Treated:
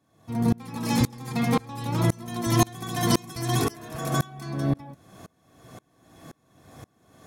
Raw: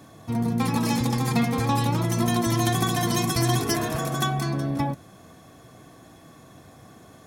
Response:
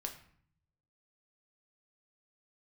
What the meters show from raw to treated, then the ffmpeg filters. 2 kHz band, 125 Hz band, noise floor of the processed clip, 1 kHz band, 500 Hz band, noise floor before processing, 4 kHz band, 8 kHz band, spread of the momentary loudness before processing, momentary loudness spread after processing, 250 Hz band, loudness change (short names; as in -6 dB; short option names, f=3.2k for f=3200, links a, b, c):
-4.0 dB, -2.0 dB, -67 dBFS, -4.0 dB, -2.0 dB, -50 dBFS, -4.0 dB, -3.0 dB, 5 LU, 7 LU, -2.0 dB, -2.5 dB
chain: -af "aeval=exprs='val(0)*pow(10,-30*if(lt(mod(-1.9*n/s,1),2*abs(-1.9)/1000),1-mod(-1.9*n/s,1)/(2*abs(-1.9)/1000),(mod(-1.9*n/s,1)-2*abs(-1.9)/1000)/(1-2*abs(-1.9)/1000))/20)':c=same,volume=6.5dB"